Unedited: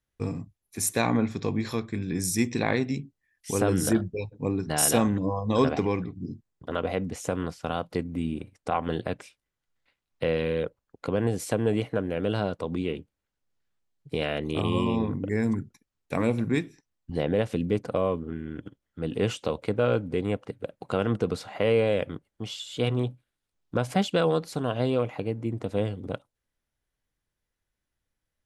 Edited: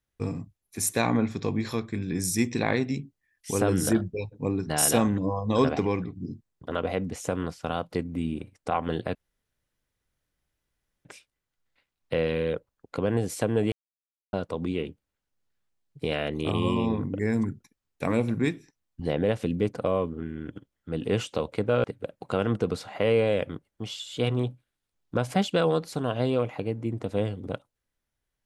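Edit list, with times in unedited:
9.15 insert room tone 1.90 s
11.82–12.43 mute
19.94–20.44 cut

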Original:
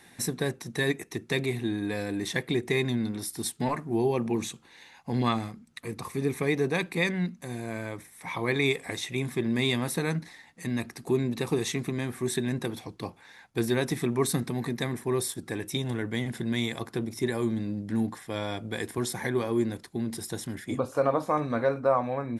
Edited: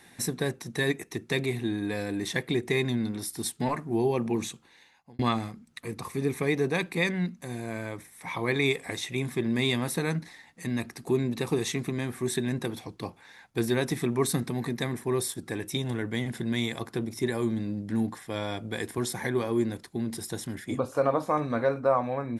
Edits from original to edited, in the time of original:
4.45–5.19 fade out

